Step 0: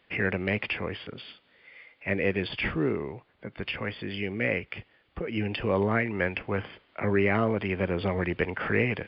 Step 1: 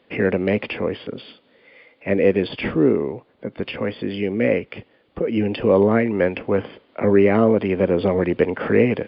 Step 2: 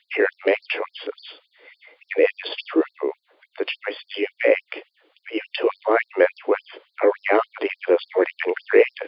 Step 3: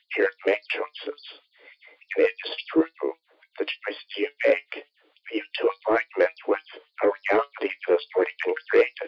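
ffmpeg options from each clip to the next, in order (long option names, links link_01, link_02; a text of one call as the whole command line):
ffmpeg -i in.wav -af "equalizer=frequency=125:width_type=o:width=1:gain=4,equalizer=frequency=250:width_type=o:width=1:gain=11,equalizer=frequency=500:width_type=o:width=1:gain=11,equalizer=frequency=1000:width_type=o:width=1:gain=4,equalizer=frequency=4000:width_type=o:width=1:gain=5,volume=-1.5dB" out.wav
ffmpeg -i in.wav -af "afftfilt=real='re*gte(b*sr/1024,260*pow(4100/260,0.5+0.5*sin(2*PI*3.5*pts/sr)))':imag='im*gte(b*sr/1024,260*pow(4100/260,0.5+0.5*sin(2*PI*3.5*pts/sr)))':win_size=1024:overlap=0.75,volume=4dB" out.wav
ffmpeg -i in.wav -af "flanger=delay=6:depth=1.1:regen=69:speed=0.33:shape=triangular,asoftclip=type=tanh:threshold=-11.5dB,volume=2dB" out.wav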